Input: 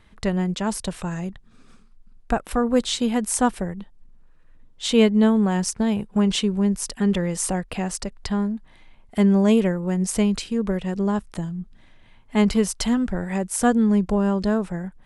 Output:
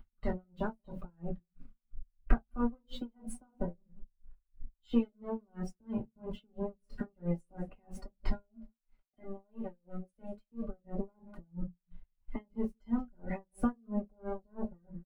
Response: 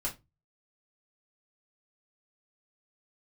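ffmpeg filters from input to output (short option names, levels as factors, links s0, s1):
-filter_complex "[0:a]acompressor=threshold=0.0316:ratio=12,asettb=1/sr,asplit=3[s0][s1][s2];[s0]atrim=end=8.314[s3];[s1]atrim=start=8.31:end=10.62,asetpts=PTS-STARTPTS,afade=t=in:d=0.004:c=qsin,afade=t=out:st=2.306:d=0.004:c=qsin,lowshelf=f=320:g=-8[s4];[s2]atrim=start=10.616[s5];[s3][s4]acrossfade=d=0.004:c1=hsin:c2=qsin[s6];[s6][s5]acrossfade=d=0.004:c1=qsin:c2=hsin,acompressor=mode=upward:threshold=0.0112:ratio=2.5,aeval=exprs='sgn(val(0))*max(abs(val(0))-0.00668,0)':c=same,equalizer=f=7100:t=o:w=1.6:g=-10,asplit=2[s7][s8];[s8]adelay=183,lowpass=f=4000:p=1,volume=0.141,asplit=2[s9][s10];[s10]adelay=183,lowpass=f=4000:p=1,volume=0.28,asplit=2[s11][s12];[s12]adelay=183,lowpass=f=4000:p=1,volume=0.28[s13];[s7][s9][s11][s13]amix=inputs=4:normalize=0[s14];[1:a]atrim=start_sample=2205[s15];[s14][s15]afir=irnorm=-1:irlink=0,afftdn=nr=16:nf=-40,aeval=exprs='val(0)*pow(10,-39*(0.5-0.5*cos(2*PI*3*n/s))/20)':c=same,volume=1.19"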